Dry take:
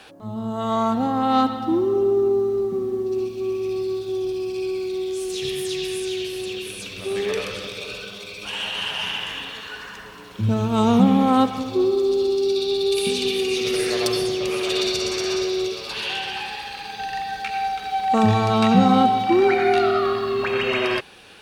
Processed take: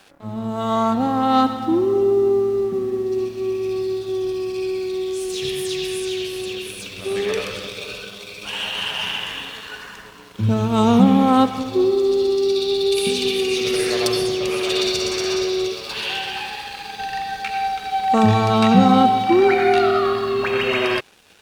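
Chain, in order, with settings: crossover distortion -46.5 dBFS; gain +2.5 dB

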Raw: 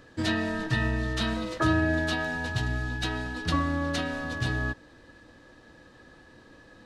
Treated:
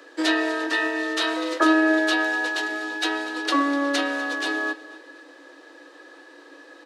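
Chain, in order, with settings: Chebyshev high-pass 280 Hz, order 8; feedback echo 0.246 s, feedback 35%, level -17 dB; gain +7.5 dB

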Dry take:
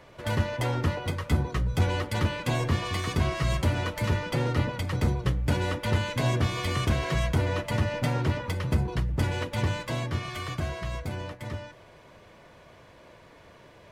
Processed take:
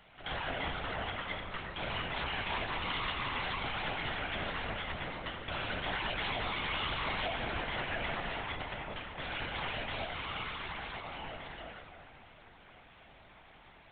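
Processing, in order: HPF 430 Hz; tilt +3 dB/oct; shoebox room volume 160 m³, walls hard, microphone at 0.52 m; LPC vocoder at 8 kHz whisper; gain -7 dB

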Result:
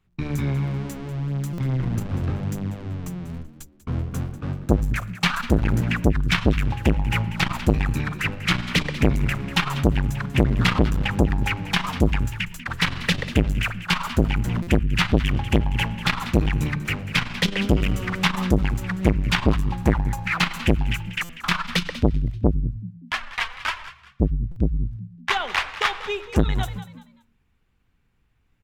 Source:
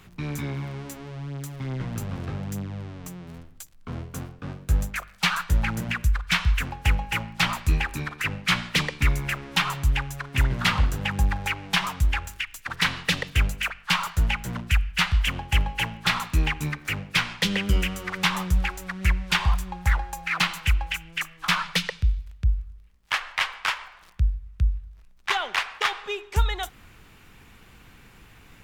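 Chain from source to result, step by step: high shelf 5700 Hz -4.5 dB; notches 50/100/150/200 Hz; 22.57–24.76 flange 1.7 Hz, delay 2.8 ms, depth 1.7 ms, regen +1%; gate -43 dBFS, range -25 dB; low shelf 190 Hz +10 dB; frequency-shifting echo 0.192 s, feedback 30%, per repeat +61 Hz, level -15 dB; stuck buffer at 1.53/14.62/21.24/24.51, samples 256, times 8; core saturation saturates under 430 Hz; gain +2.5 dB

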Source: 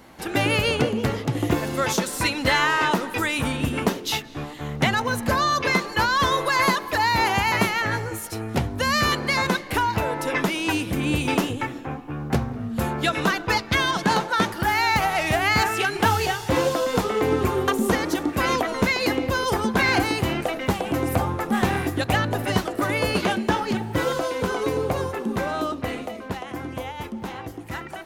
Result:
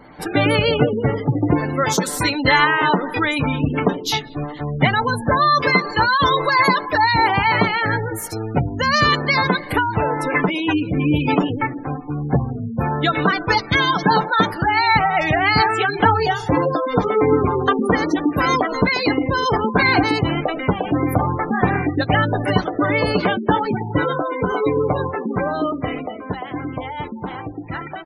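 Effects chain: spectral gate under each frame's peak -20 dB strong; notch 2700 Hz, Q 9.2; comb 6.8 ms, depth 38%; gain +4.5 dB

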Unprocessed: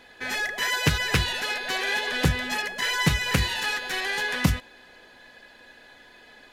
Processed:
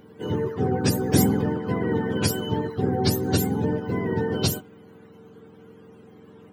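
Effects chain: spectrum mirrored in octaves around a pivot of 870 Hz; 0.97–1.49 sustainer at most 37 dB/s; gain +1 dB

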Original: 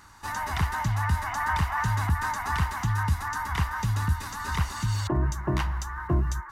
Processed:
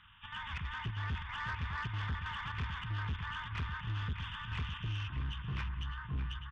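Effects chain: nonlinear frequency compression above 2300 Hz 4:1; Chebyshev band-stop 170–1300 Hz, order 2; chopper 3.1 Hz, depth 60%, duty 80%; on a send: feedback echo 0.605 s, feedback 39%, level -8 dB; on the sum: soft clip -24 dBFS, distortion -12 dB; gain -7.5 dB

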